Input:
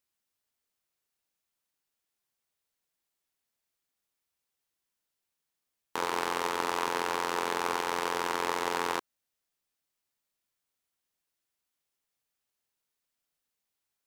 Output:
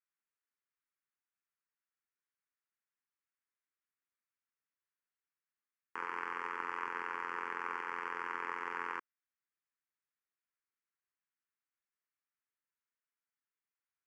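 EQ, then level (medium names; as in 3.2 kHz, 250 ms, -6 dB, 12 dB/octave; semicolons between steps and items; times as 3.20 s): high-pass 850 Hz 6 dB/octave; low-pass 2.3 kHz 12 dB/octave; static phaser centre 1.6 kHz, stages 4; -2.0 dB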